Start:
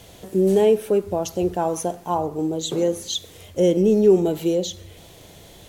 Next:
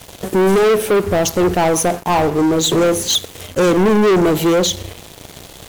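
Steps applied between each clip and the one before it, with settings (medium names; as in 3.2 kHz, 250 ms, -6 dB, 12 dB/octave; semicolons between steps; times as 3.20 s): waveshaping leveller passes 5; trim -4 dB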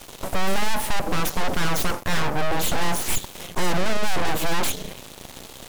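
full-wave rectifier; trim -3.5 dB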